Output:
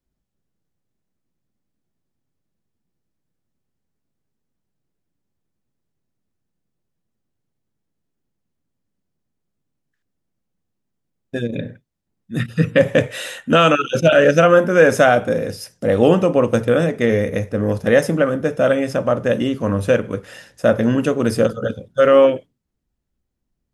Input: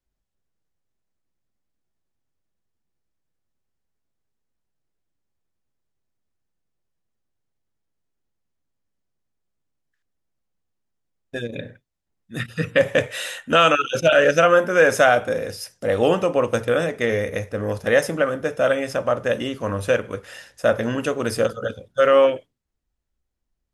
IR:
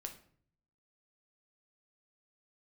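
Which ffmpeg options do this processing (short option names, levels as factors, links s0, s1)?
-af "equalizer=f=190:t=o:w=2.3:g=10"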